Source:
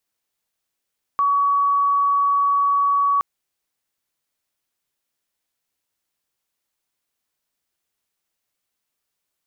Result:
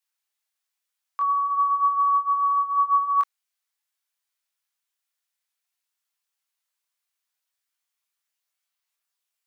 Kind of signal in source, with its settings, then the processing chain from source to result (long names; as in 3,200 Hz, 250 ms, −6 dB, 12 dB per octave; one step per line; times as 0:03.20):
tone sine 1,130 Hz −15 dBFS 2.02 s
high-pass filter 950 Hz 12 dB per octave
multi-voice chorus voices 4, 0.42 Hz, delay 23 ms, depth 2.7 ms